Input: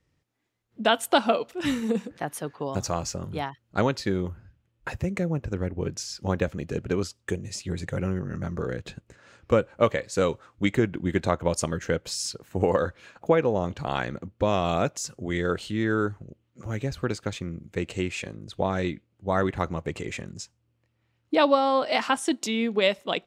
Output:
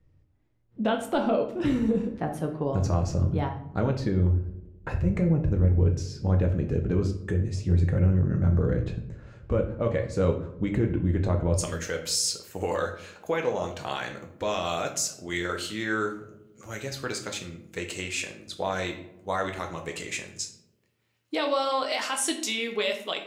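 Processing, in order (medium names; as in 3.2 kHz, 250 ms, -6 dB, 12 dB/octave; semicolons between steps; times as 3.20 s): tilt EQ -3 dB/octave, from 11.58 s +3 dB/octave; peak limiter -15 dBFS, peak gain reduction 11 dB; filtered feedback delay 95 ms, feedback 73%, low-pass 1.2 kHz, level -19 dB; simulated room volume 77 m³, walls mixed, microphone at 0.51 m; trim -2.5 dB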